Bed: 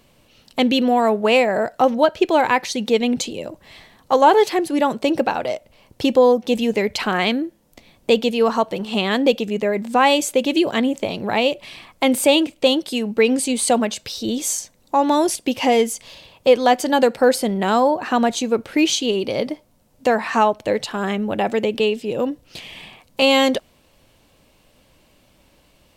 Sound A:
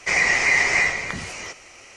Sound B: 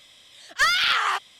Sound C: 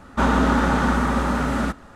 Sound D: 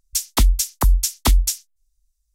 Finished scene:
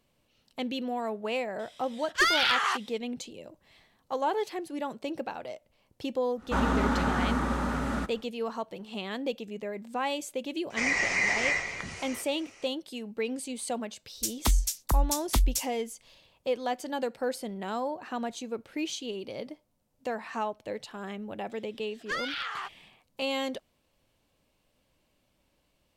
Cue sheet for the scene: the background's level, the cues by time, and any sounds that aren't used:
bed −16 dB
0:01.59: mix in B −4 dB
0:06.34: mix in C −8 dB, fades 0.10 s
0:10.70: mix in A −8.5 dB
0:14.08: mix in D −9 dB
0:21.50: mix in B −12.5 dB + high-shelf EQ 6,700 Hz −11 dB

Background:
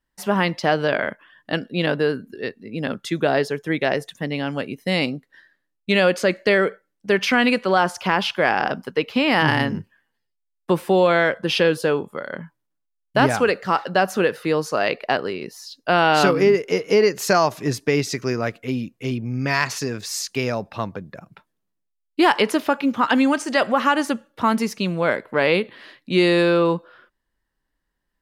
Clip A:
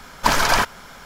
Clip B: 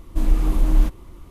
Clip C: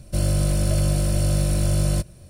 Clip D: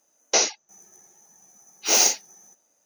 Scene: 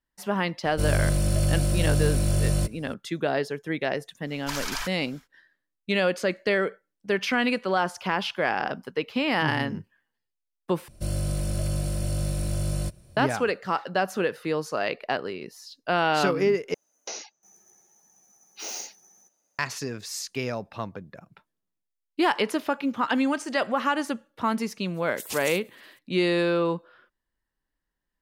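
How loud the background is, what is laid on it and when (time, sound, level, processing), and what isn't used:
background −6.5 dB
0:00.65: mix in C −2.5 dB
0:04.23: mix in A −9 dB, fades 0.10 s + guitar amp tone stack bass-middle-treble 10-0-10
0:10.88: overwrite with C −7 dB
0:16.74: overwrite with D −6 dB + downward compressor 2.5 to 1, threshold −31 dBFS
0:24.94: mix in A −2.5 dB + gate on every frequency bin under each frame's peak −30 dB weak
not used: B

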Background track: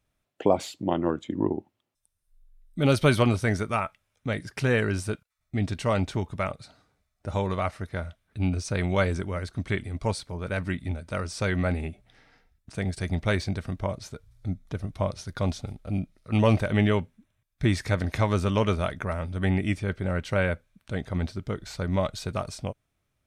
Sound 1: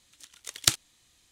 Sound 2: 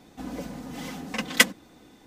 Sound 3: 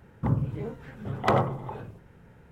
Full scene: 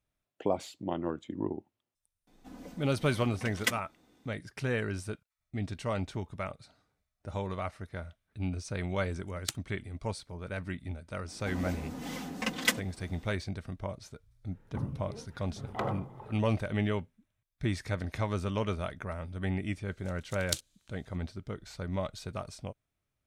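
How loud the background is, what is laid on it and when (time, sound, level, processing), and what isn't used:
background track −8 dB
0:02.27: mix in 2 −12 dB
0:08.81: mix in 1 −12.5 dB + spectral dynamics exaggerated over time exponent 2
0:11.28: mix in 2 −2.5 dB + brickwall limiter −10 dBFS
0:14.51: mix in 3 −11 dB
0:19.85: mix in 1 −10 dB + flat-topped bell 1,100 Hz −9 dB 2.5 octaves

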